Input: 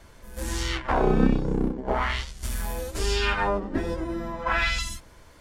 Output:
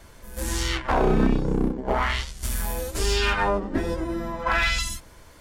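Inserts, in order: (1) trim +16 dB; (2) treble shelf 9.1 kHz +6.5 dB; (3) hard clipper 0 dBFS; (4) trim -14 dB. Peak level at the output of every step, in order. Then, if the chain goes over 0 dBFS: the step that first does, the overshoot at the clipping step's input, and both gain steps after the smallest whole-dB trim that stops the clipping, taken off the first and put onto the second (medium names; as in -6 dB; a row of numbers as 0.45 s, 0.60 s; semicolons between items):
+9.5 dBFS, +9.5 dBFS, 0.0 dBFS, -14.0 dBFS; step 1, 9.5 dB; step 1 +6 dB, step 4 -4 dB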